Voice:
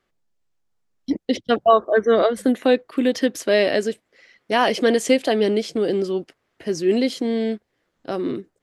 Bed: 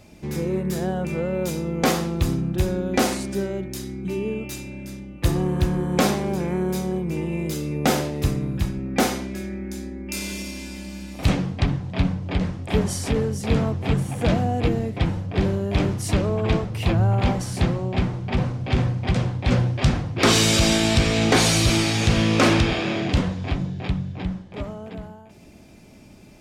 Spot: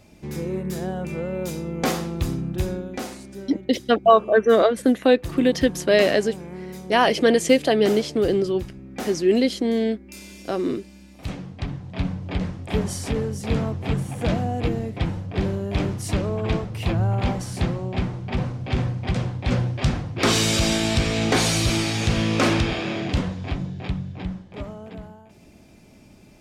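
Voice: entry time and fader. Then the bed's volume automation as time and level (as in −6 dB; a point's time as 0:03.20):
2.40 s, +0.5 dB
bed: 0:02.73 −3 dB
0:03.00 −11.5 dB
0:11.32 −11.5 dB
0:12.20 −2.5 dB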